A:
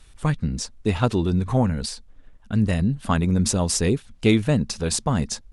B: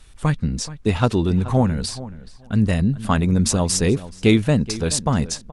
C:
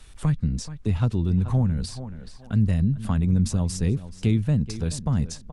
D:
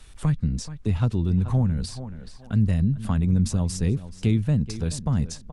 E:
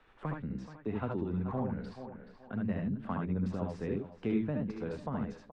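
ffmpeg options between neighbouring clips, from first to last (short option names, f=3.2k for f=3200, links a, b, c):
-filter_complex "[0:a]asplit=2[a][b];[b]adelay=427,lowpass=f=2.8k:p=1,volume=-16dB,asplit=2[c][d];[d]adelay=427,lowpass=f=2.8k:p=1,volume=0.16[e];[a][c][e]amix=inputs=3:normalize=0,volume=2.5dB"
-filter_complex "[0:a]acrossover=split=190[a][b];[b]acompressor=threshold=-39dB:ratio=2.5[c];[a][c]amix=inputs=2:normalize=0"
-af anull
-filter_complex "[0:a]lowpass=3.5k,acrossover=split=240 2200:gain=0.1 1 0.141[a][b][c];[a][b][c]amix=inputs=3:normalize=0,aecho=1:1:67|77:0.473|0.631,volume=-3.5dB"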